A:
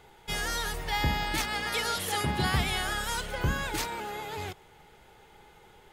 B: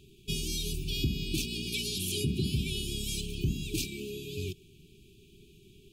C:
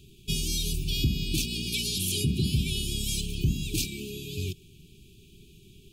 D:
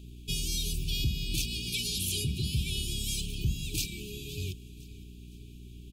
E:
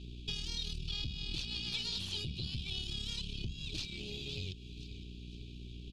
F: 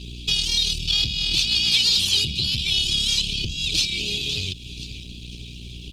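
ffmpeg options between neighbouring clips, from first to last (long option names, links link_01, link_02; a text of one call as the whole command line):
ffmpeg -i in.wav -af "afftfilt=real='re*(1-between(b*sr/4096,430,2300))':imag='im*(1-between(b*sr/4096,430,2300))':win_size=4096:overlap=0.75,equalizer=frequency=160:width_type=o:width=2.2:gain=6.5,alimiter=limit=-20dB:level=0:latency=1:release=304" out.wav
ffmpeg -i in.wav -af "equalizer=frequency=790:width=0.77:gain=-14.5,volume=5.5dB" out.wav
ffmpeg -i in.wav -filter_complex "[0:a]acrossover=split=150|450|2600[link_01][link_02][link_03][link_04];[link_02]acompressor=threshold=-44dB:ratio=6[link_05];[link_01][link_05][link_03][link_04]amix=inputs=4:normalize=0,aeval=exprs='val(0)+0.00708*(sin(2*PI*60*n/s)+sin(2*PI*2*60*n/s)/2+sin(2*PI*3*60*n/s)/3+sin(2*PI*4*60*n/s)/4+sin(2*PI*5*60*n/s)/5)':channel_layout=same,aecho=1:1:512|1024|1536:0.106|0.0455|0.0196,volume=-2.5dB" out.wav
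ffmpeg -i in.wav -af "acompressor=threshold=-41dB:ratio=3,aeval=exprs='(tanh(44.7*val(0)+0.65)-tanh(0.65))/44.7':channel_layout=same,lowpass=frequency=4200:width_type=q:width=2.1,volume=3.5dB" out.wav
ffmpeg -i in.wav -filter_complex "[0:a]aexciter=amount=3.8:drive=3.5:freq=2200,asplit=2[link_01][link_02];[link_02]asoftclip=type=tanh:threshold=-22dB,volume=-4dB[link_03];[link_01][link_03]amix=inputs=2:normalize=0,volume=6dB" -ar 48000 -c:a libopus -b:a 20k out.opus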